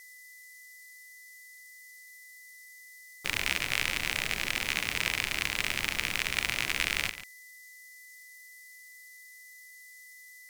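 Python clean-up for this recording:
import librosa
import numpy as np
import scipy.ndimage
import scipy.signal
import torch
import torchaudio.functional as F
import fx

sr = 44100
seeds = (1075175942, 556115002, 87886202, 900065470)

y = fx.notch(x, sr, hz=2000.0, q=30.0)
y = fx.noise_reduce(y, sr, print_start_s=7.42, print_end_s=7.92, reduce_db=28.0)
y = fx.fix_echo_inverse(y, sr, delay_ms=142, level_db=-13.0)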